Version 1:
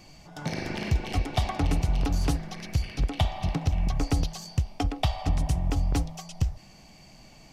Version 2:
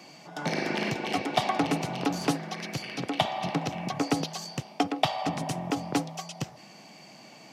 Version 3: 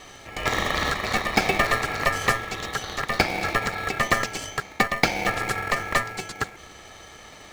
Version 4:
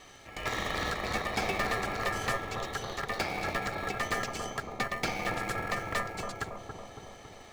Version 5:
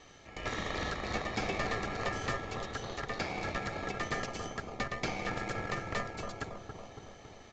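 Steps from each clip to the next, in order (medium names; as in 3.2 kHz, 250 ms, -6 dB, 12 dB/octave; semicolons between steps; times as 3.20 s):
Bessel high-pass 250 Hz, order 8; treble shelf 4.8 kHz -6.5 dB; trim +6 dB
ring modulator 1.5 kHz; in parallel at -4.5 dB: sample-and-hold 36×; on the sum: trim +6.5 dB
hard clipper -16.5 dBFS, distortion -10 dB; bucket-brigade echo 278 ms, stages 2048, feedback 68%, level -4 dB; trim -8 dB
in parallel at -7 dB: decimation with a swept rate 32×, swing 60% 2.3 Hz; on the sum: resampled via 16 kHz; trim -4.5 dB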